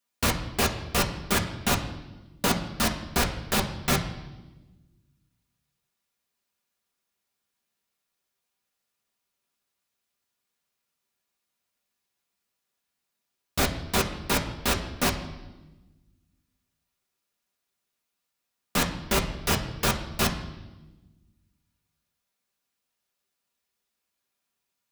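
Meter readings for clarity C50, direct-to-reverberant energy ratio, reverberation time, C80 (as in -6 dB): 10.0 dB, 0.0 dB, 1.1 s, 12.0 dB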